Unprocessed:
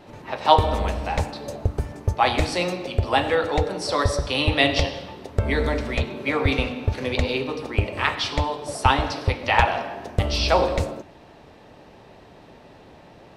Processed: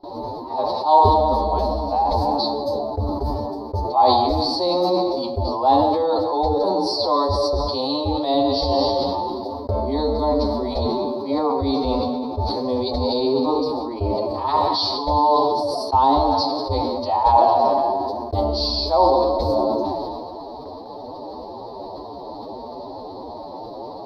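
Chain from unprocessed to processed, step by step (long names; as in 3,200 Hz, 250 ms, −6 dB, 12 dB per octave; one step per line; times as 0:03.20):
reversed playback
downward compressor 5 to 1, threshold −30 dBFS, peak gain reduction 18.5 dB
reversed playback
dynamic equaliser 480 Hz, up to −4 dB, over −50 dBFS, Q 5.7
phase-vocoder stretch with locked phases 1.8×
drawn EQ curve 110 Hz 0 dB, 160 Hz −7 dB, 260 Hz +8 dB, 490 Hz +9 dB, 1,000 Hz +13 dB, 1,500 Hz −16 dB, 2,800 Hz −20 dB, 4,400 Hz +14 dB, 7,200 Hz −21 dB, 13,000 Hz −1 dB
noise gate with hold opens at −32 dBFS
level that may fall only so fast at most 25 dB per second
level +5.5 dB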